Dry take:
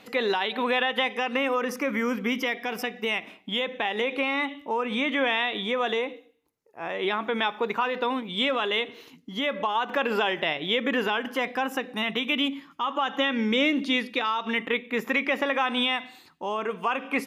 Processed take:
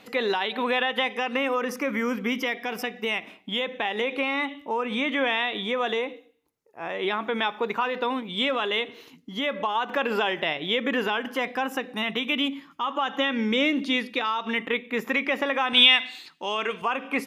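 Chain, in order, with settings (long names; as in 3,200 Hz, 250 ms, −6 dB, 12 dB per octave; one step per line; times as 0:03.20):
0:15.73–0:16.82: meter weighting curve D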